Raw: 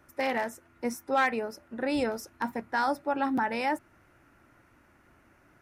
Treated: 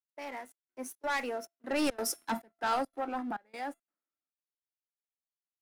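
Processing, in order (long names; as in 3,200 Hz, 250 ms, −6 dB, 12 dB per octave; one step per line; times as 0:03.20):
source passing by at 0:02.06, 25 m/s, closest 11 metres
high-pass filter 220 Hz 24 dB per octave
parametric band 10,000 Hz +7 dB 0.44 octaves
leveller curve on the samples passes 3
tuned comb filter 680 Hz, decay 0.31 s, mix 60%
gate pattern ".xxxxx..xxx" 174 BPM −24 dB
multiband upward and downward expander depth 70%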